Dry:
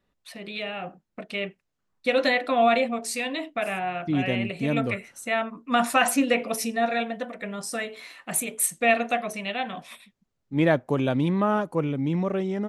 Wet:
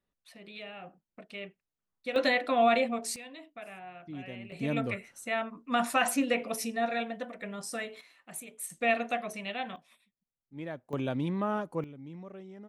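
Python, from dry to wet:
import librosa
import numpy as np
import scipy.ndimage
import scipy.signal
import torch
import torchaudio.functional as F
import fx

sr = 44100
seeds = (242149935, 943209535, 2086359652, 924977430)

y = fx.gain(x, sr, db=fx.steps((0.0, -11.5), (2.16, -4.0), (3.16, -17.0), (4.52, -6.0), (8.01, -15.5), (8.7, -6.5), (9.76, -19.0), (10.93, -8.0), (11.84, -19.5)))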